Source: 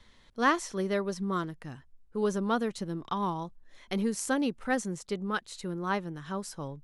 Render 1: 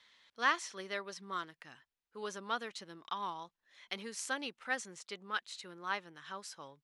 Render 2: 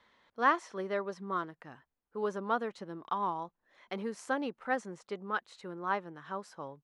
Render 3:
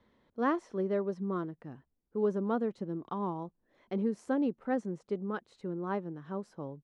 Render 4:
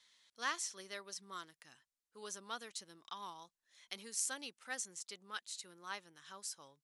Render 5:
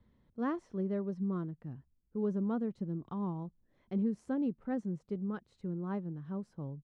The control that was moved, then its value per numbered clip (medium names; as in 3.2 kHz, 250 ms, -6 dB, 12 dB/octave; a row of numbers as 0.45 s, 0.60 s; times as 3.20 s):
band-pass filter, frequency: 2.9 kHz, 990 Hz, 360 Hz, 7.3 kHz, 140 Hz